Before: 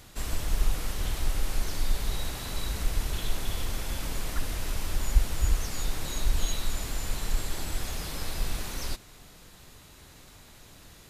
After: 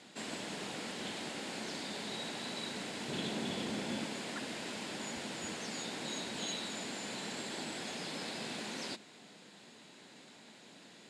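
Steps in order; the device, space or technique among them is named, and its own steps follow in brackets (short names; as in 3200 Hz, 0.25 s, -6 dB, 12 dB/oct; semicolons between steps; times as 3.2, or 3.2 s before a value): 3.08–4.04 low shelf 390 Hz +9 dB; television speaker (speaker cabinet 190–7600 Hz, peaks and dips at 220 Hz +5 dB, 1200 Hz -7 dB, 5900 Hz -8 dB); gain -1 dB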